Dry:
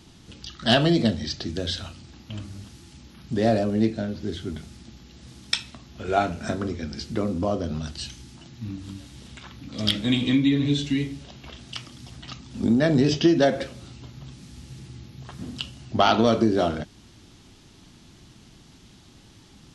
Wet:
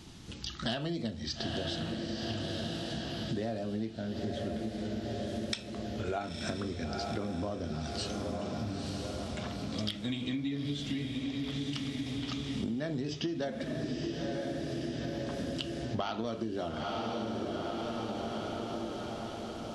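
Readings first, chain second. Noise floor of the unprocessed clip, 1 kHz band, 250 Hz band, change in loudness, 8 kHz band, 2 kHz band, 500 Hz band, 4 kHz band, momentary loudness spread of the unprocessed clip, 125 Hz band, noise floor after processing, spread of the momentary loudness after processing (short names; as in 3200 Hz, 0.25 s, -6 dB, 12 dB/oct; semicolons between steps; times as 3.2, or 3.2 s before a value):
-52 dBFS, -10.5 dB, -9.5 dB, -12.0 dB, -6.5 dB, -9.5 dB, -10.0 dB, -9.0 dB, 23 LU, -8.5 dB, -42 dBFS, 3 LU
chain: on a send: diffused feedback echo 0.921 s, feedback 56%, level -8 dB; on the sum: compressor 8:1, threshold -32 dBFS, peak gain reduction 18 dB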